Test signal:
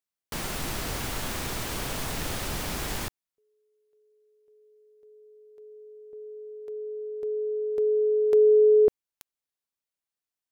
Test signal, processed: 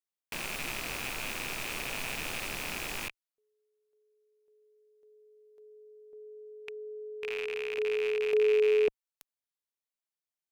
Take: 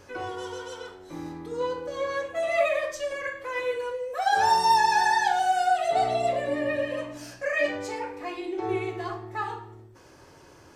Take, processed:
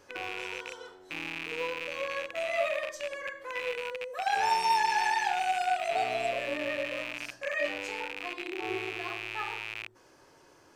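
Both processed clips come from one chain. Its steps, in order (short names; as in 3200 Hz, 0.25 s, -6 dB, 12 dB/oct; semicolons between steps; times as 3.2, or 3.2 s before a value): rattling part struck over -47 dBFS, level -19 dBFS; bell 67 Hz -10.5 dB 2.7 oct; gain -5.5 dB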